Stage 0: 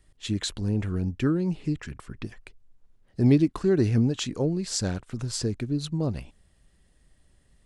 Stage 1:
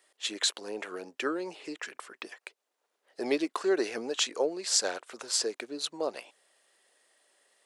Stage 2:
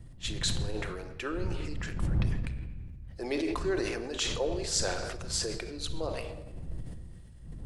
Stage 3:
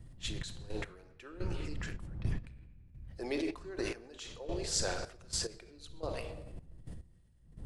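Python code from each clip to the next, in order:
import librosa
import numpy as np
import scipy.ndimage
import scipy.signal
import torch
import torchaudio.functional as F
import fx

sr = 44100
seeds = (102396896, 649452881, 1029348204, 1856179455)

y1 = scipy.signal.sosfilt(scipy.signal.butter(4, 460.0, 'highpass', fs=sr, output='sos'), x)
y1 = y1 * 10.0 ** (4.0 / 20.0)
y2 = fx.dmg_wind(y1, sr, seeds[0], corner_hz=85.0, level_db=-34.0)
y2 = fx.room_shoebox(y2, sr, seeds[1], volume_m3=1700.0, walls='mixed', distance_m=0.8)
y2 = fx.sustainer(y2, sr, db_per_s=31.0)
y2 = y2 * 10.0 ** (-4.5 / 20.0)
y3 = fx.step_gate(y2, sr, bpm=107, pattern='xxx..x....x', floor_db=-12.0, edge_ms=4.5)
y3 = y3 * 10.0 ** (-3.5 / 20.0)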